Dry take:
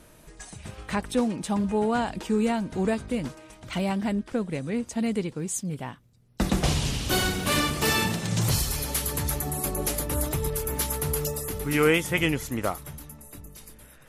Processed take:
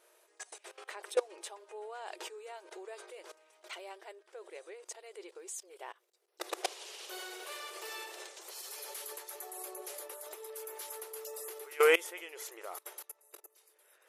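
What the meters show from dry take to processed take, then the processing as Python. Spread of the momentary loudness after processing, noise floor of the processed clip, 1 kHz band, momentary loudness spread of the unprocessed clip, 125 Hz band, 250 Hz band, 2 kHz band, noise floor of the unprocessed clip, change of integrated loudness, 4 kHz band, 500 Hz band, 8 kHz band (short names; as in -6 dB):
15 LU, -71 dBFS, -11.5 dB, 17 LU, under -40 dB, -28.0 dB, -9.0 dB, -53 dBFS, -12.0 dB, -12.5 dB, -7.5 dB, -13.0 dB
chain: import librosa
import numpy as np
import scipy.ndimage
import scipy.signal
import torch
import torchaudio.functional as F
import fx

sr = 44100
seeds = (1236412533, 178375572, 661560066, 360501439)

y = fx.level_steps(x, sr, step_db=21)
y = fx.brickwall_highpass(y, sr, low_hz=340.0)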